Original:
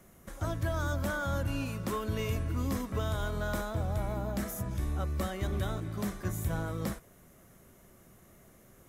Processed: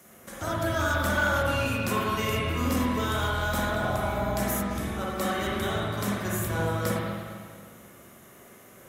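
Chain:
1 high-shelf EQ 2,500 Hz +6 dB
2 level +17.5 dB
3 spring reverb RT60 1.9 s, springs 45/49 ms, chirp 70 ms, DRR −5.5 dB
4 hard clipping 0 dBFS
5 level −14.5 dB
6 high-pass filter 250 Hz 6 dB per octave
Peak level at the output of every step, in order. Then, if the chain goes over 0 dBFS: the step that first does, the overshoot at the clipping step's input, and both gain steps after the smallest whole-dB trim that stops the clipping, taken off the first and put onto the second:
−21.0, −3.5, +6.0, 0.0, −14.5, −13.5 dBFS
step 3, 6.0 dB
step 2 +11.5 dB, step 5 −8.5 dB

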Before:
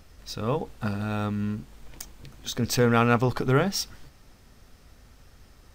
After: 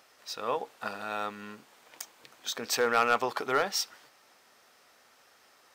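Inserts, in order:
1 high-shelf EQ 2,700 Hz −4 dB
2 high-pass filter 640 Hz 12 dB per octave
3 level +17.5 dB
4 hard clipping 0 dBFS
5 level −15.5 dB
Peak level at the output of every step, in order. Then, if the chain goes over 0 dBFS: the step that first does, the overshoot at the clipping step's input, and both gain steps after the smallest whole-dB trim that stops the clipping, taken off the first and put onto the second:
−8.5, −9.5, +8.0, 0.0, −15.5 dBFS
step 3, 8.0 dB
step 3 +9.5 dB, step 5 −7.5 dB

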